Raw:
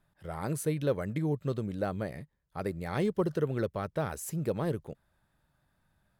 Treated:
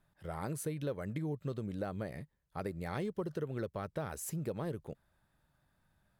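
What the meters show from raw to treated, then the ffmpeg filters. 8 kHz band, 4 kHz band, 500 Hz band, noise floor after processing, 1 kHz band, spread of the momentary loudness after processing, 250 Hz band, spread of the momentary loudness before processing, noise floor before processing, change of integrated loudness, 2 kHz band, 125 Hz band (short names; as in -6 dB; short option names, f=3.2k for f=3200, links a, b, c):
-3.0 dB, -6.0 dB, -7.5 dB, -78 dBFS, -5.5 dB, 7 LU, -6.5 dB, 9 LU, -76 dBFS, -6.5 dB, -5.5 dB, -6.0 dB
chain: -af "acompressor=threshold=-34dB:ratio=3,volume=-1.5dB"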